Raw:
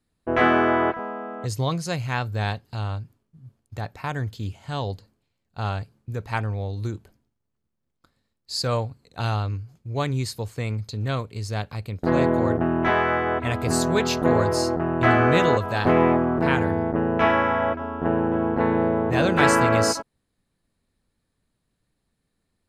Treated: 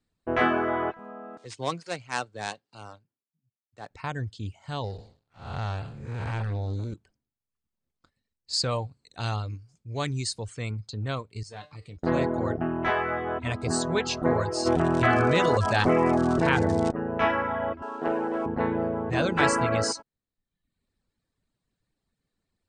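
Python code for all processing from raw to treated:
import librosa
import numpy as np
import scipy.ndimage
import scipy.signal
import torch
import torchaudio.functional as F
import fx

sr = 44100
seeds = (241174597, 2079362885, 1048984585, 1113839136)

y = fx.chain(x, sr, fx.dead_time(dead_ms=0.1),
    fx.highpass(hz=260.0, slope=12),
    fx.band_widen(depth_pct=70), at=(1.37, 3.91))
y = fx.chain(y, sr, fx.spec_blur(span_ms=297.0),
    fx.leveller(passes=2), at=(4.84, 6.94))
y = fx.chain(y, sr, fx.high_shelf(hz=4300.0, db=8.0),
    fx.transient(attack_db=-3, sustain_db=3), at=(8.53, 10.71))
y = fx.chain(y, sr, fx.highpass(hz=65.0, slope=12),
    fx.comb_fb(f0_hz=150.0, decay_s=0.42, harmonics='all', damping=0.0, mix_pct=80),
    fx.power_curve(exponent=0.7), at=(11.43, 11.97))
y = fx.dmg_crackle(y, sr, seeds[0], per_s=260.0, level_db=-27.0, at=(14.65, 16.9), fade=0.02)
y = fx.env_flatten(y, sr, amount_pct=70, at=(14.65, 16.9), fade=0.02)
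y = fx.chain(y, sr, fx.highpass(hz=350.0, slope=12),
    fx.leveller(passes=1), at=(17.82, 18.46))
y = fx.dereverb_blind(y, sr, rt60_s=0.77)
y = scipy.signal.sosfilt(scipy.signal.ellip(4, 1.0, 40, 8800.0, 'lowpass', fs=sr, output='sos'), y)
y = y * librosa.db_to_amplitude(-2.5)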